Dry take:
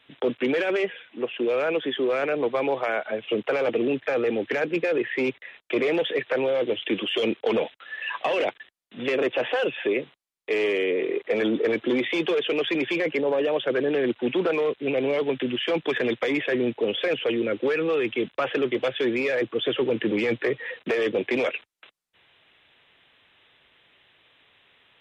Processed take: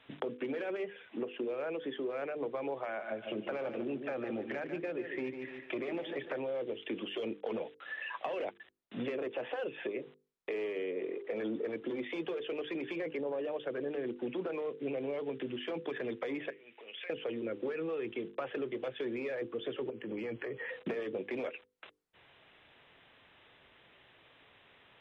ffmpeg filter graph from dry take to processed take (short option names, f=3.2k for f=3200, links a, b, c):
-filter_complex "[0:a]asettb=1/sr,asplit=3[a][b][c];[a]atrim=end=2.854[d];[b]atrim=start=2.85:end=6.4,asetpts=PTS-STARTPTS,afade=t=in:d=0.004:c=qsin,afade=t=out:st=3.546:d=0.004:c=qsin,bandreject=f=460:w=5.6,aecho=1:1:147|294|441:0.316|0.0822|0.0214,atrim=end_sample=156555[e];[c]atrim=start=6.396[f];[d][e]acrossfade=d=0.004:c1=hsin:c2=qsin[g];[g][f]acrossfade=d=0.004:c1=qsin:c2=hsin,asettb=1/sr,asplit=3[h][i][j];[h]atrim=end=16.504[k];[i]atrim=start=16.5:end=17.1,asetpts=PTS-STARTPTS,afade=t=in:d=0.004:c=qsin,afade=t=out:st=0.596:d=0.004:c=qsin,acompressor=threshold=-30dB:ratio=5:attack=3.2:release=140:knee=1:detection=peak,bandpass=f=2.4k:t=q:w=2.5[l];[j]atrim=start=17.096[m];[k][l]acrossfade=d=0.004:c1=hsin:c2=qsin[n];[n][m]acrossfade=d=0.004:c1=qsin:c2=hsin,asettb=1/sr,asplit=3[o][p][q];[o]atrim=end=19.904[r];[p]atrim=start=19.9:end=20.69,asetpts=PTS-STARTPTS,afade=t=in:d=0.004:c=qsin,afade=t=out:st=0.786:d=0.004:c=qsin,acompressor=threshold=-32dB:ratio=6:attack=3.2:release=140:knee=1:detection=peak,asuperstop=centerf=3700:order=12:qfactor=6.1[s];[q]atrim=start=20.686[t];[r][s]acrossfade=d=0.004:c1=hsin:c2=qsin[u];[u][t]acrossfade=d=0.004:c1=qsin:c2=hsin,acompressor=threshold=-37dB:ratio=6,highshelf=f=2.2k:g=-11.5,bandreject=f=50:t=h:w=6,bandreject=f=100:t=h:w=6,bandreject=f=150:t=h:w=6,bandreject=f=200:t=h:w=6,bandreject=f=250:t=h:w=6,bandreject=f=300:t=h:w=6,bandreject=f=350:t=h:w=6,bandreject=f=400:t=h:w=6,bandreject=f=450:t=h:w=6,bandreject=f=500:t=h:w=6,volume=3dB"